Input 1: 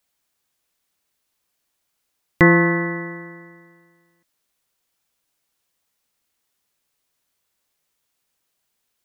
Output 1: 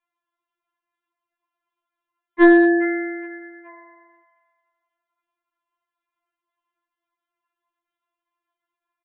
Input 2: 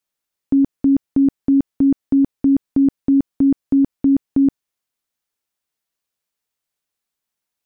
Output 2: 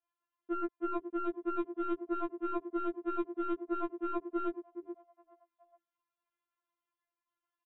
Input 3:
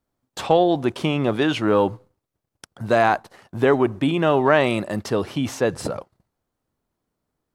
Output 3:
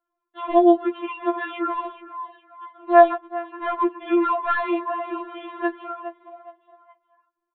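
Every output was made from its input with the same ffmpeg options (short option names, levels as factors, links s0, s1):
-filter_complex "[0:a]acrossover=split=160 2500:gain=0.178 1 0.224[s0][s1][s2];[s0][s1][s2]amix=inputs=3:normalize=0,asplit=4[s3][s4][s5][s6];[s4]adelay=419,afreqshift=110,volume=0.211[s7];[s5]adelay=838,afreqshift=220,volume=0.0759[s8];[s6]adelay=1257,afreqshift=330,volume=0.0275[s9];[s3][s7][s8][s9]amix=inputs=4:normalize=0,aresample=8000,aeval=exprs='clip(val(0),-1,0.266)':c=same,aresample=44100,equalizer=f=1100:t=o:w=0.61:g=10.5,afftfilt=real='re*4*eq(mod(b,16),0)':imag='im*4*eq(mod(b,16),0)':win_size=2048:overlap=0.75,volume=0.75"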